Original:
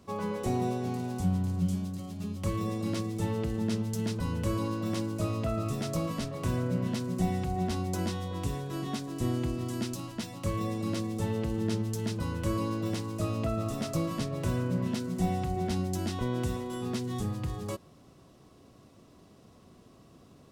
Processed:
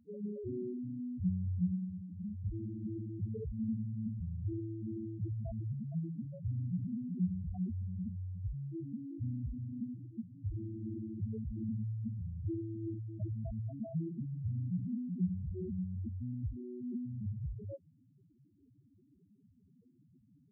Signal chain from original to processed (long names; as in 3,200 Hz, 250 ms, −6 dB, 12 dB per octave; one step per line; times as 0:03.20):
Butterworth band-reject 1,500 Hz, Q 0.93
spectral peaks only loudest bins 2
level −2 dB